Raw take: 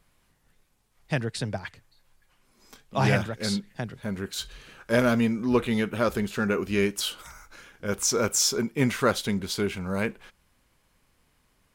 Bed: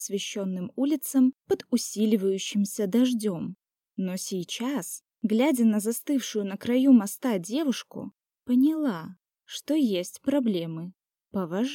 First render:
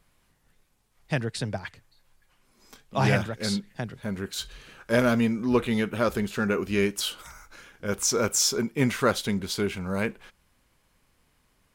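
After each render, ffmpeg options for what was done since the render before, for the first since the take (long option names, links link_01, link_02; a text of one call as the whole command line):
ffmpeg -i in.wav -af anull out.wav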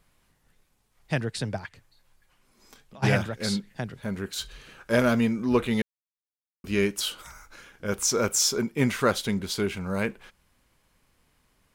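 ffmpeg -i in.wav -filter_complex "[0:a]asplit=3[link_01][link_02][link_03];[link_01]afade=type=out:start_time=1.65:duration=0.02[link_04];[link_02]acompressor=threshold=-45dB:ratio=6:attack=3.2:release=140:knee=1:detection=peak,afade=type=in:start_time=1.65:duration=0.02,afade=type=out:start_time=3.02:duration=0.02[link_05];[link_03]afade=type=in:start_time=3.02:duration=0.02[link_06];[link_04][link_05][link_06]amix=inputs=3:normalize=0,asplit=3[link_07][link_08][link_09];[link_07]atrim=end=5.82,asetpts=PTS-STARTPTS,afade=type=out:start_time=5.816:duration=0.004:curve=hsin[link_10];[link_08]atrim=start=5.82:end=6.64,asetpts=PTS-STARTPTS,volume=0[link_11];[link_09]atrim=start=6.64,asetpts=PTS-STARTPTS,afade=type=in:duration=0.004:curve=hsin[link_12];[link_10][link_11][link_12]concat=n=3:v=0:a=1" out.wav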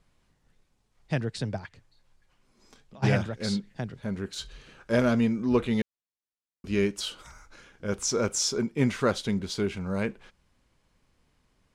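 ffmpeg -i in.wav -af "lowpass=6700,equalizer=frequency=1900:width=0.4:gain=-4.5" out.wav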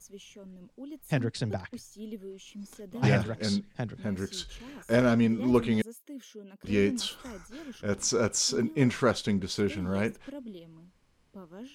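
ffmpeg -i in.wav -i bed.wav -filter_complex "[1:a]volume=-17.5dB[link_01];[0:a][link_01]amix=inputs=2:normalize=0" out.wav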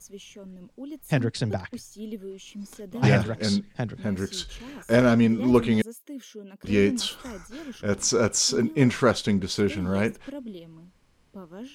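ffmpeg -i in.wav -af "volume=4.5dB" out.wav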